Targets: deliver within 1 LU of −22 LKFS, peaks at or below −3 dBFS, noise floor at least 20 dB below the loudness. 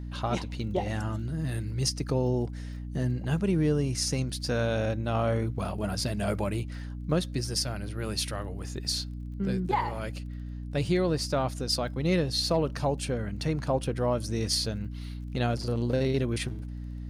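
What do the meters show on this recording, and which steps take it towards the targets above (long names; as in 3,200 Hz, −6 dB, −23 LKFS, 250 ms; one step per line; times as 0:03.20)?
crackle rate 24 per second; mains hum 60 Hz; hum harmonics up to 300 Hz; level of the hum −34 dBFS; integrated loudness −30.0 LKFS; sample peak −14.0 dBFS; target loudness −22.0 LKFS
→ click removal
hum removal 60 Hz, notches 5
level +8 dB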